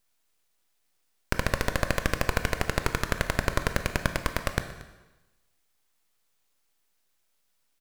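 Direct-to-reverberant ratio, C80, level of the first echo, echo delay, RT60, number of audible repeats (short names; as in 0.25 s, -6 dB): 7.5 dB, 11.0 dB, -19.5 dB, 0.231 s, 1.0 s, 1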